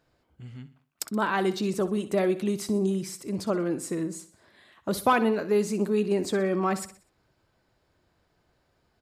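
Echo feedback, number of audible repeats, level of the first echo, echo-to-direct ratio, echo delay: 43%, 3, -14.0 dB, -13.0 dB, 62 ms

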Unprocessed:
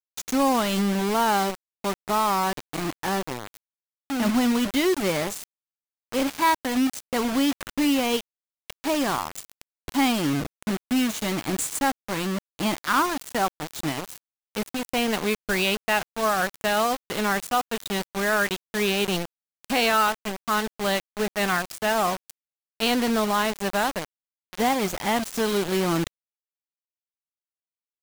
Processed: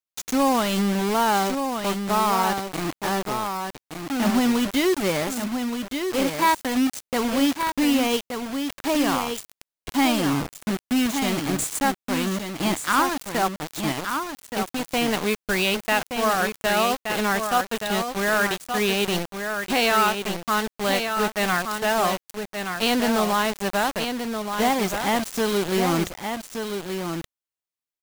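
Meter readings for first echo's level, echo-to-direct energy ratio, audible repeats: -6.5 dB, -6.5 dB, 1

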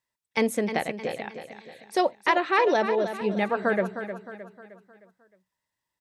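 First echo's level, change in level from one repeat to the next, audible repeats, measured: -10.0 dB, -7.0 dB, 4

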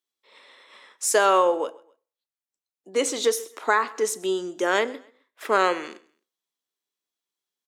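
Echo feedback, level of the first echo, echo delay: 33%, -23.0 dB, 131 ms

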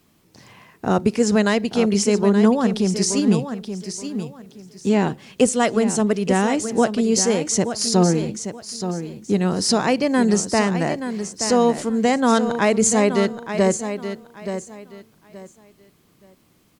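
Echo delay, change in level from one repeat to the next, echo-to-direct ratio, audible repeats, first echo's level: 876 ms, -12.5 dB, -9.0 dB, 3, -9.5 dB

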